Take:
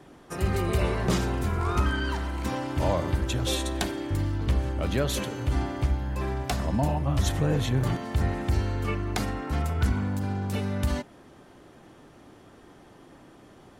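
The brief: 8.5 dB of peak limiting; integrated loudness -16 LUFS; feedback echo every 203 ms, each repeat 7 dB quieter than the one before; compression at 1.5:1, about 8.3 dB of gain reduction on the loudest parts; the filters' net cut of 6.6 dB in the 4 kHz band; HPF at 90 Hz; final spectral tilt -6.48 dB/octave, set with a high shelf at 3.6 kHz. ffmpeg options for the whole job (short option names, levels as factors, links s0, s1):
-af "highpass=90,highshelf=f=3600:g=-7,equalizer=f=4000:t=o:g=-4,acompressor=threshold=0.00501:ratio=1.5,alimiter=level_in=2.11:limit=0.0631:level=0:latency=1,volume=0.473,aecho=1:1:203|406|609|812|1015:0.447|0.201|0.0905|0.0407|0.0183,volume=14.1"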